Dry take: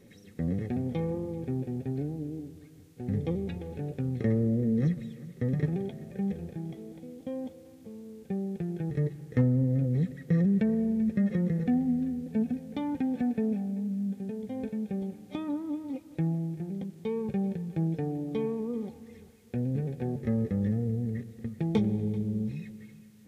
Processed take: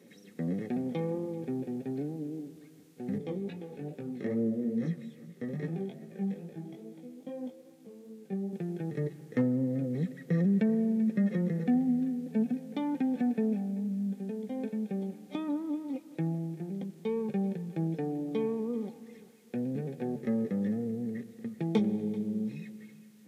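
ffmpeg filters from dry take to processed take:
ffmpeg -i in.wav -filter_complex "[0:a]asettb=1/sr,asplit=3[link_01][link_02][link_03];[link_01]atrim=end=3.184[link_04];[link_02]atrim=start=3.18:end=8.53,asetpts=PTS-STARTPTS,afade=type=in:duration=0.004:curve=qsin,afade=type=out:start_time=5.346:duration=0.004:curve=qsin,flanger=delay=17.5:depth=3.8:speed=2.4[link_05];[link_03]atrim=start=8.526[link_06];[link_04][link_05]acrossfade=duration=0.004:curve1=hsin:curve2=qsin[link_07];[link_07][link_06]acrossfade=duration=0.004:curve1=qsin:curve2=hsin,highpass=frequency=170:width=0.5412,highpass=frequency=170:width=1.3066" out.wav

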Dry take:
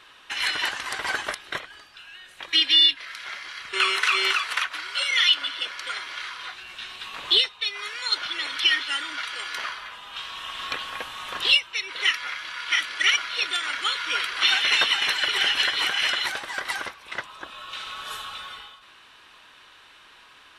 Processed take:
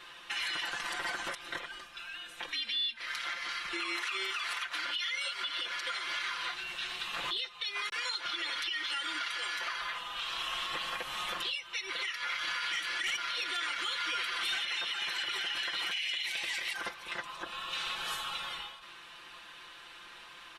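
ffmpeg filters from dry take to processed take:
ffmpeg -i in.wav -filter_complex "[0:a]asettb=1/sr,asplit=3[link_01][link_02][link_03];[link_01]atrim=end=0.634[link_04];[link_02]atrim=start=0.63:end=4.05,asetpts=PTS-STARTPTS,afade=type=in:duration=0.004:curve=qsin,afade=type=out:start_time=3.416:duration=0.004:curve=qsin,afreqshift=-44[link_05];[link_03]atrim=start=4.046[link_06];[link_04][link_05]acrossfade=duration=0.004:curve1=hsin:curve2=qsin[link_07];[link_07][link_06]acrossfade=duration=0.004:curve1=qsin:curve2=hsin,asettb=1/sr,asplit=3[link_08][link_09][link_10];[link_08]atrim=end=7.894[link_11];[link_09]atrim=start=7.89:end=10.75,asetpts=PTS-STARTPTS,afade=type=in:duration=0.004:curve=qsin,afade=type=out:start_time=2.856:duration=0.004:curve=qsin,acrossover=split=180[link_12][link_13];[link_13]adelay=30[link_14];[link_12][link_14]amix=inputs=2:normalize=0,atrim=end_sample=126126[link_15];[link_10]atrim=start=10.746[link_16];[link_11][link_15]acrossfade=duration=0.004:curve1=hsin:curve2=qsin[link_17];[link_17][link_16]acrossfade=duration=0.004:curve1=qsin:curve2=hsin,asettb=1/sr,asplit=3[link_18][link_19][link_20];[link_18]atrim=end=12.294[link_21];[link_19]atrim=start=12.29:end=14.65,asetpts=PTS-STARTPTS,afade=type=in:duration=0.004:curve=qsin,afade=type=out:start_time=2.356:duration=0.004:curve=qsin,aeval=exprs='0.398*sin(PI/2*1.78*val(0)/0.398)':channel_layout=same[link_22];[link_20]atrim=start=14.646[link_23];[link_21][link_22]acrossfade=duration=0.004:curve1=hsin:curve2=qsin[link_24];[link_24][link_23]acrossfade=duration=0.004:curve1=qsin:curve2=hsin,asettb=1/sr,asplit=3[link_25][link_26][link_27];[link_25]atrim=end=15.914[link_28];[link_26]atrim=start=15.91:end=16.73,asetpts=PTS-STARTPTS,afade=type=in:duration=0.004:curve=qsin,afade=type=out:start_time=0.816:duration=0.004:curve=qsin,highshelf=frequency=1800:width_type=q:width=3:gain=8[link_29];[link_27]atrim=start=16.726[link_30];[link_28][link_29]acrossfade=duration=0.004:curve1=hsin:curve2=qsin[link_31];[link_31][link_30]acrossfade=duration=0.004:curve1=qsin:curve2=hsin,asplit=3[link_32][link_33][link_34];[link_32]atrim=end=4.852[link_35];[link_33]atrim=start=4.848:end=5.432,asetpts=PTS-STARTPTS,areverse[link_36];[link_34]atrim=start=5.428[link_37];[link_35][link_36]acrossfade=duration=0.004:curve1=hsin:curve2=hsin[link_38];[link_38][link_37]acrossfade=duration=0.004:curve1=hsin:curve2=hsin,acompressor=threshold=-25dB:ratio=6,aecho=1:1:5.8:0.84,alimiter=level_in=0.5dB:limit=-24dB:level=0:latency=1:release=113,volume=-0.5dB,volume=-1.5dB" out.wav

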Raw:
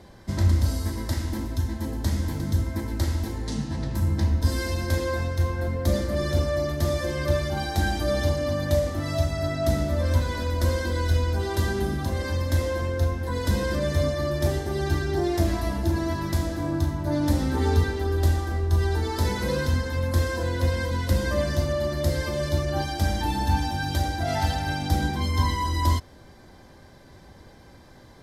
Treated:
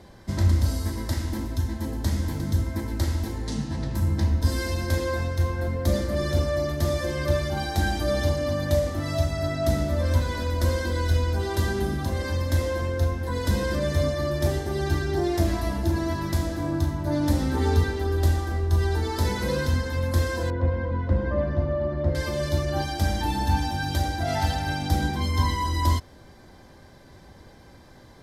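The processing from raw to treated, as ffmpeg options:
ffmpeg -i in.wav -filter_complex "[0:a]asettb=1/sr,asplit=3[link_01][link_02][link_03];[link_01]atrim=end=20.504[link_04];[link_02]atrim=start=20.5:end=22.15,asetpts=PTS-STARTPTS,afade=type=in:duration=0.004:curve=qsin,afade=type=out:start_time=1.646:duration=0.004:curve=qsin,lowpass=1300[link_05];[link_03]atrim=start=22.146[link_06];[link_04][link_05]acrossfade=duration=0.004:curve1=hsin:curve2=qsin[link_07];[link_07][link_06]acrossfade=duration=0.004:curve1=qsin:curve2=hsin" out.wav

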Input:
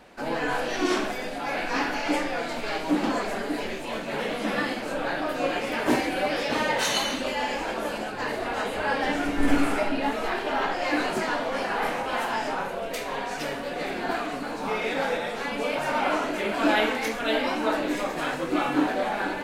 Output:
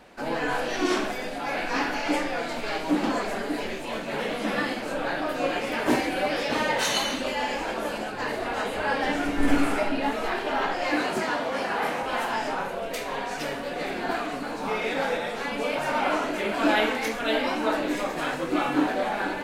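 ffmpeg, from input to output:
ffmpeg -i in.wav -filter_complex "[0:a]asettb=1/sr,asplit=3[link_01][link_02][link_03];[link_01]atrim=end=10.954[link_04];[link_02]atrim=start=10.95:end=12.03,asetpts=PTS-STARTPTS,afade=type=in:duration=0.004:curve=qsin,afade=type=out:start_time=1.076:duration=0.004:curve=qsin,highpass=52[link_05];[link_03]atrim=start=12.026[link_06];[link_04][link_05]acrossfade=duration=0.004:curve1=hsin:curve2=qsin[link_07];[link_07][link_06]acrossfade=duration=0.004:curve1=qsin:curve2=hsin" out.wav

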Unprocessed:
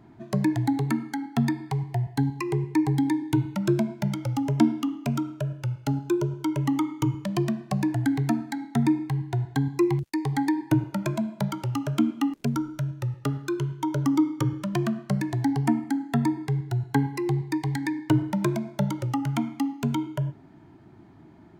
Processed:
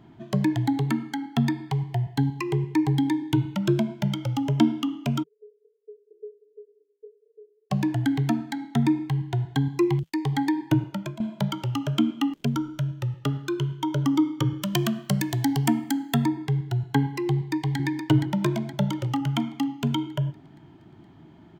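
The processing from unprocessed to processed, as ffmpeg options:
ffmpeg -i in.wav -filter_complex "[0:a]asplit=3[link_01][link_02][link_03];[link_01]afade=type=out:start_time=5.22:duration=0.02[link_04];[link_02]asuperpass=centerf=440:order=8:qfactor=7.9,afade=type=in:start_time=5.22:duration=0.02,afade=type=out:start_time=7.7:duration=0.02[link_05];[link_03]afade=type=in:start_time=7.7:duration=0.02[link_06];[link_04][link_05][link_06]amix=inputs=3:normalize=0,asettb=1/sr,asplit=3[link_07][link_08][link_09];[link_07]atrim=end=14.624[link_10];[link_08]atrim=start=14.62:end=16.25,asetpts=PTS-STARTPTS,afade=type=in:duration=0.004:curve=qsin,afade=type=out:start_time=1.626:duration=0.004:curve=qsin,aemphasis=mode=production:type=75kf[link_11];[link_09]atrim=start=16.246[link_12];[link_10][link_11]acrossfade=duration=0.004:curve1=hsin:curve2=qsin[link_13];[link_13][link_12]acrossfade=duration=0.004:curve1=qsin:curve2=hsin,asplit=2[link_14][link_15];[link_15]afade=type=in:start_time=17.32:duration=0.01,afade=type=out:start_time=17.78:duration=0.01,aecho=0:1:470|940|1410|1880|2350|2820|3290:0.530884|0.291986|0.160593|0.0883259|0.0485792|0.0267186|0.0146952[link_16];[link_14][link_16]amix=inputs=2:normalize=0,asplit=2[link_17][link_18];[link_17]atrim=end=11.2,asetpts=PTS-STARTPTS,afade=type=out:start_time=10.65:duration=0.55:curve=qsin:silence=0.177828[link_19];[link_18]atrim=start=11.2,asetpts=PTS-STARTPTS,afade=type=in:duration=0.004:curve=hsin:silence=0.177828[link_20];[link_19][link_20]concat=n=2:v=0:a=1,equalizer=frequency=160:width_type=o:width=0.33:gain=4,equalizer=frequency=3150:width_type=o:width=0.33:gain=10,equalizer=frequency=10000:width_type=o:width=0.33:gain=-6" out.wav

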